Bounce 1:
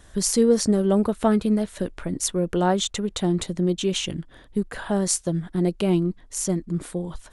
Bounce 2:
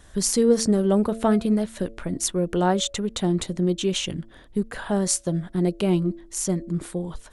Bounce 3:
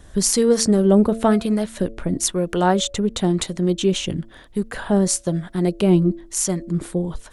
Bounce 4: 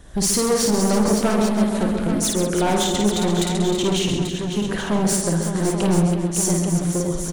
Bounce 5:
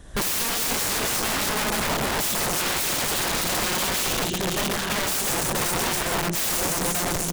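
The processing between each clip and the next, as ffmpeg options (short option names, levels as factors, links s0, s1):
-af "bandreject=f=112.6:t=h:w=4,bandreject=f=225.2:t=h:w=4,bandreject=f=337.8:t=h:w=4,bandreject=f=450.4:t=h:w=4,bandreject=f=563:t=h:w=4,bandreject=f=675.6:t=h:w=4"
-filter_complex "[0:a]acrossover=split=660[s0][s1];[s0]aeval=exprs='val(0)*(1-0.5/2+0.5/2*cos(2*PI*1*n/s))':c=same[s2];[s1]aeval=exprs='val(0)*(1-0.5/2-0.5/2*cos(2*PI*1*n/s))':c=same[s3];[s2][s3]amix=inputs=2:normalize=0,volume=2.11"
-filter_complex "[0:a]asplit=2[s0][s1];[s1]aecho=0:1:133|266|399|532:0.398|0.139|0.0488|0.0171[s2];[s0][s2]amix=inputs=2:normalize=0,volume=7.5,asoftclip=hard,volume=0.133,asplit=2[s3][s4];[s4]aecho=0:1:53|331|559|837:0.668|0.335|0.398|0.355[s5];[s3][s5]amix=inputs=2:normalize=0"
-af "aeval=exprs='(mod(10*val(0)+1,2)-1)/10':c=same"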